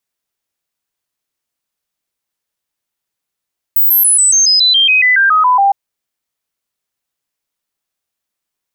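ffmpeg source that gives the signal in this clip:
-f lavfi -i "aevalsrc='0.473*clip(min(mod(t,0.14),0.14-mod(t,0.14))/0.005,0,1)*sin(2*PI*16000*pow(2,-floor(t/0.14)/3)*mod(t,0.14))':d=1.96:s=44100"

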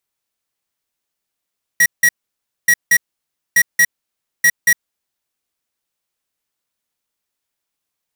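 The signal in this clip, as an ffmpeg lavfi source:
-f lavfi -i "aevalsrc='0.299*(2*lt(mod(1910*t,1),0.5)-1)*clip(min(mod(mod(t,0.88),0.23),0.06-mod(mod(t,0.88),0.23))/0.005,0,1)*lt(mod(t,0.88),0.46)':d=3.52:s=44100"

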